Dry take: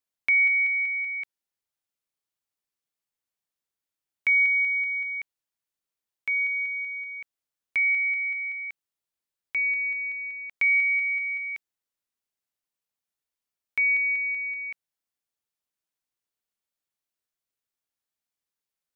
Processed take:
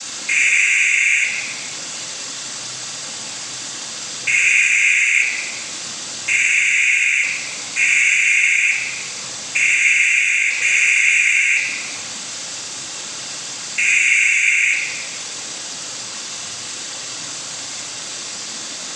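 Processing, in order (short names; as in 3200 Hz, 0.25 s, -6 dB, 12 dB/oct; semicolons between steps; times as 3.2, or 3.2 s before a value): switching spikes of -28.5 dBFS; sample leveller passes 5; noise vocoder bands 16; shoebox room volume 1400 m³, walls mixed, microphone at 2.2 m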